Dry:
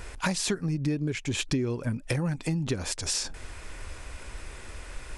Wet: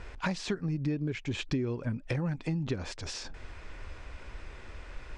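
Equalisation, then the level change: distance through air 140 m; -3.0 dB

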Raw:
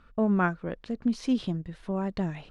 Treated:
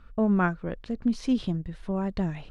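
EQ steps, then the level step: bass shelf 84 Hz +10.5 dB; 0.0 dB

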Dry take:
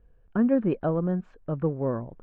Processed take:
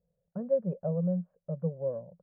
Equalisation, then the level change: two resonant band-passes 310 Hz, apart 1.7 oct; distance through air 460 m; dynamic bell 440 Hz, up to +4 dB, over -44 dBFS, Q 1.4; 0.0 dB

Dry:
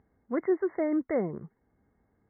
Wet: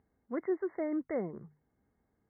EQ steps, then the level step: hum notches 50/100/150 Hz; -6.0 dB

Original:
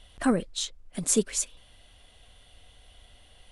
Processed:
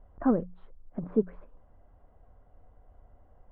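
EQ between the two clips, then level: low-pass 1.2 kHz 24 dB/octave; distance through air 240 m; hum notches 60/120/180 Hz; 0.0 dB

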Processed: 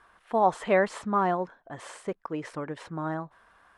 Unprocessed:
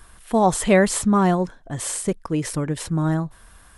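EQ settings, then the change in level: low-pass 1.1 kHz 12 dB/octave; tilt EQ +4.5 dB/octave; bass shelf 300 Hz -5 dB; 0.0 dB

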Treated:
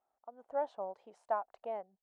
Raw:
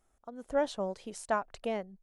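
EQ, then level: band-pass filter 790 Hz, Q 2.6; 0.0 dB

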